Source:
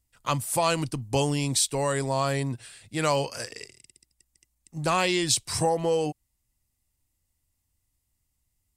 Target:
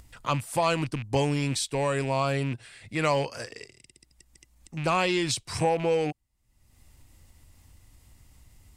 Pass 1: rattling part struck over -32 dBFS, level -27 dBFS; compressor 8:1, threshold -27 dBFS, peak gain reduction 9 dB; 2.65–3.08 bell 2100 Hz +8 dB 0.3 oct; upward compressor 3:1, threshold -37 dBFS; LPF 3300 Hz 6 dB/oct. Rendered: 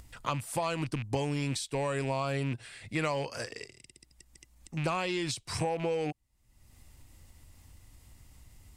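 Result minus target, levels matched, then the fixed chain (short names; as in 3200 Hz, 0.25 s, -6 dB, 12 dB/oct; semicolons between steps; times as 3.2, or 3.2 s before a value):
compressor: peak gain reduction +9 dB
rattling part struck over -32 dBFS, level -27 dBFS; 2.65–3.08 bell 2100 Hz +8 dB 0.3 oct; upward compressor 3:1, threshold -37 dBFS; LPF 3300 Hz 6 dB/oct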